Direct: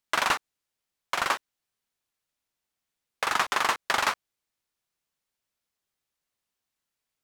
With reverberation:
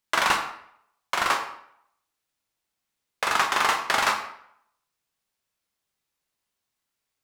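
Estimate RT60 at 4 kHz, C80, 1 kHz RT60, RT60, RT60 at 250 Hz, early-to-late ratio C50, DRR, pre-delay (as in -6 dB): 0.50 s, 10.5 dB, 0.70 s, 0.70 s, 0.65 s, 7.5 dB, 3.5 dB, 14 ms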